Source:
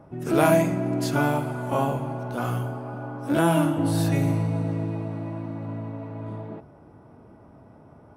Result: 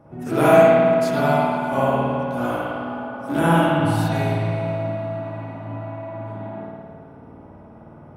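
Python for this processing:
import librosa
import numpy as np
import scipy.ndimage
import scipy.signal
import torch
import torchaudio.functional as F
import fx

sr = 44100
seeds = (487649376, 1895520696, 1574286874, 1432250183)

y = fx.rev_spring(x, sr, rt60_s=1.9, pass_ms=(53,), chirp_ms=70, drr_db=-8.5)
y = F.gain(torch.from_numpy(y), -2.5).numpy()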